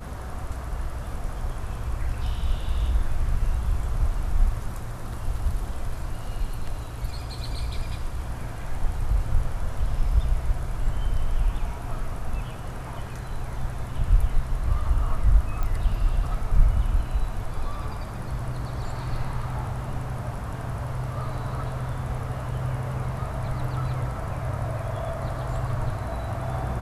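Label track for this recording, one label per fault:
15.630000	15.630000	pop -16 dBFS

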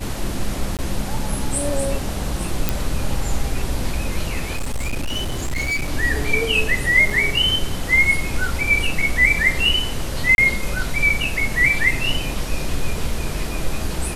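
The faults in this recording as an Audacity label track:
0.770000	0.790000	gap 18 ms
2.690000	2.690000	pop
4.530000	5.930000	clipped -19 dBFS
7.100000	7.100000	gap 3.8 ms
10.350000	10.380000	gap 31 ms

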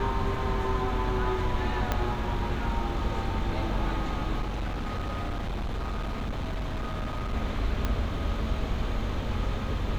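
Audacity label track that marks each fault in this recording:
1.920000	1.920000	pop -12 dBFS
4.410000	7.340000	clipped -28 dBFS
7.850000	7.850000	pop -14 dBFS

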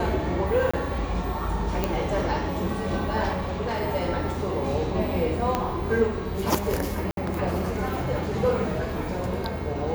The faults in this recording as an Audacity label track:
0.710000	0.730000	gap 25 ms
1.840000	1.840000	pop -10 dBFS
3.320000	3.820000	clipped -24 dBFS
5.550000	5.550000	pop -10 dBFS
7.110000	7.170000	gap 62 ms

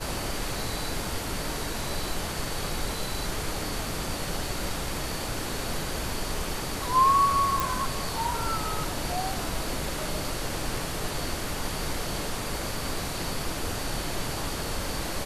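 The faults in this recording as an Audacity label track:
7.600000	7.600000	pop

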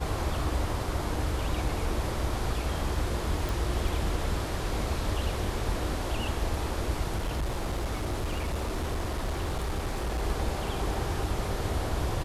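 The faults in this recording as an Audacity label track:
3.490000	3.490000	pop
7.160000	10.230000	clipped -26 dBFS

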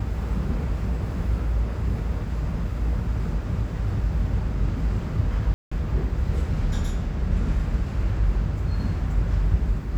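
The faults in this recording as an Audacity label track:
5.540000	5.710000	gap 0.175 s

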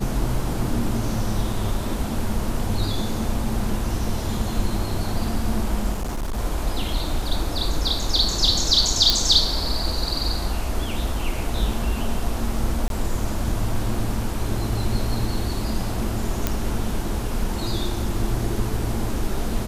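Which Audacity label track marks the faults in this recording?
5.920000	6.380000	clipped -22.5 dBFS
9.100000	9.100000	pop -2 dBFS
12.880000	12.900000	gap 22 ms
16.470000	16.470000	pop -6 dBFS

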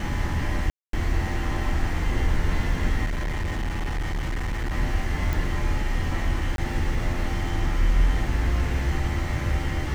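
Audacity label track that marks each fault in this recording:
0.700000	0.930000	gap 0.233 s
3.050000	4.740000	clipped -23.5 dBFS
5.330000	5.330000	pop
6.560000	6.580000	gap 22 ms

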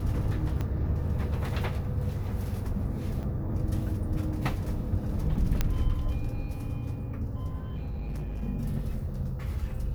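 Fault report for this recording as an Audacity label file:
0.610000	0.610000	pop -20 dBFS
3.230000	3.240000	gap 5.1 ms
5.610000	5.610000	pop -11 dBFS
7.600000	8.430000	clipped -30.5 dBFS

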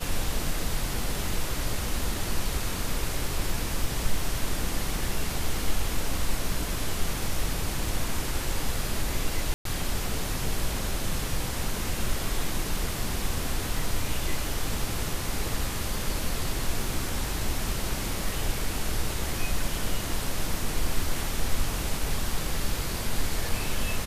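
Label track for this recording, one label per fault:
9.540000	9.650000	gap 0.113 s

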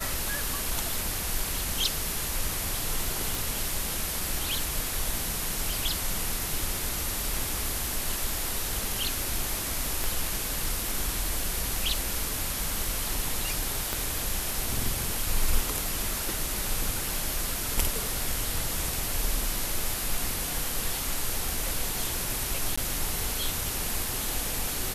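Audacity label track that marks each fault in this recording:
3.350000	3.350000	pop
10.040000	10.040000	pop
13.930000	13.930000	pop
22.760000	22.770000	gap 15 ms

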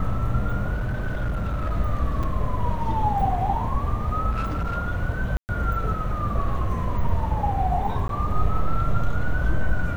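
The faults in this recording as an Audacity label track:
0.740000	1.730000	clipped -21.5 dBFS
2.230000	2.230000	gap 5 ms
4.310000	4.780000	clipped -22 dBFS
5.370000	5.490000	gap 0.119 s
8.080000	8.090000	gap 12 ms

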